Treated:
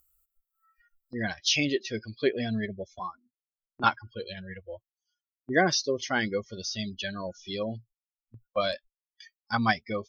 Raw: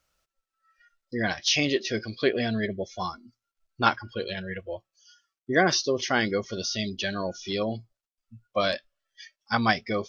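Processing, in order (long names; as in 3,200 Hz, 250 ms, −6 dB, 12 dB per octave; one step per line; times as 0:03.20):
spectral dynamics exaggerated over time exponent 1.5
noise gate with hold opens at −47 dBFS
0:02.99–0:03.84: three-way crossover with the lows and the highs turned down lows −17 dB, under 200 Hz, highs −22 dB, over 2,300 Hz
upward compression, threshold −41 dBFS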